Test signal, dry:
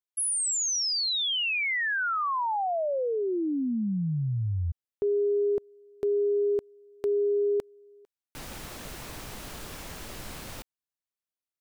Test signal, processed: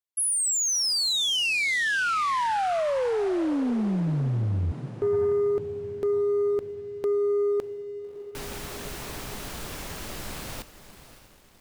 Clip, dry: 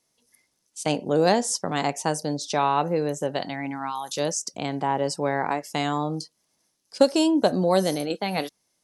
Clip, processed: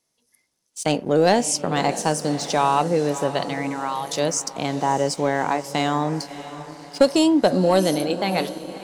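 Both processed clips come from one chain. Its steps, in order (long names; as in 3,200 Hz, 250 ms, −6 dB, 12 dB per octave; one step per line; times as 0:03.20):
feedback delay with all-pass diffusion 603 ms, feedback 49%, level −13 dB
leveller curve on the samples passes 1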